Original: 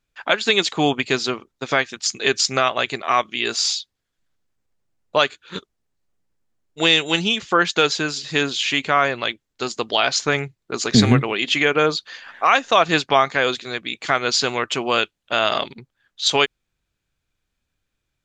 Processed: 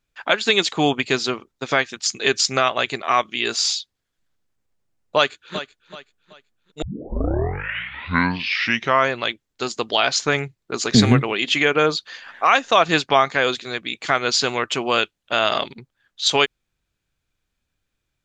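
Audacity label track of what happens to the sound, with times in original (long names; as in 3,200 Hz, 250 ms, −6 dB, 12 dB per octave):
5.160000	5.570000	delay throw 380 ms, feedback 35%, level −13 dB
6.820000	6.820000	tape start 2.31 s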